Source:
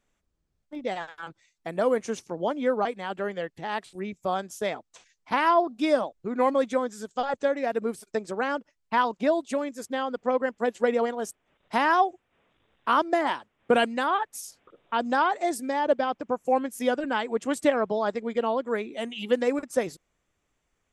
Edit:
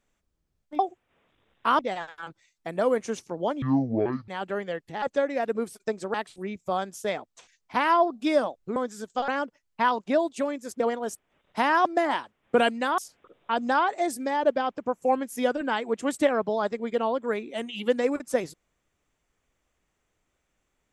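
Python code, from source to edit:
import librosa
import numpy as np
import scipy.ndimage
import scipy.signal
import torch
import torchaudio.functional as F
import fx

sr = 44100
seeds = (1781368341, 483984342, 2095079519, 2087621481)

y = fx.edit(x, sr, fx.speed_span(start_s=2.62, length_s=0.35, speed=0.53),
    fx.cut(start_s=6.33, length_s=0.44),
    fx.move(start_s=7.29, length_s=1.12, to_s=3.71),
    fx.cut(start_s=9.93, length_s=1.03),
    fx.move(start_s=12.01, length_s=1.0, to_s=0.79),
    fx.cut(start_s=14.14, length_s=0.27), tone=tone)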